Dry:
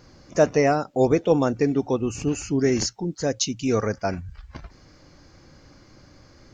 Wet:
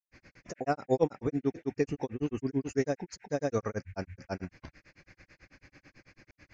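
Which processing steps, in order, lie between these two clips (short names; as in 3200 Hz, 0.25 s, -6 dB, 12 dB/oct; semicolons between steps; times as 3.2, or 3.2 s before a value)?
band noise 1500–2500 Hz -53 dBFS; grains 0.1 s, grains 9.1/s, spray 0.379 s, pitch spread up and down by 0 st; gain -5.5 dB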